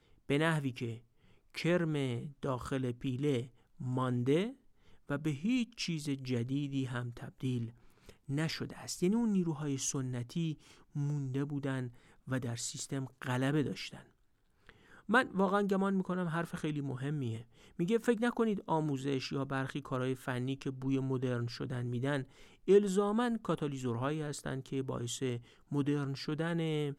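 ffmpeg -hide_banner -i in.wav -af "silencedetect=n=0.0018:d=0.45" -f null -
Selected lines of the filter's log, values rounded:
silence_start: 14.09
silence_end: 14.67 | silence_duration: 0.58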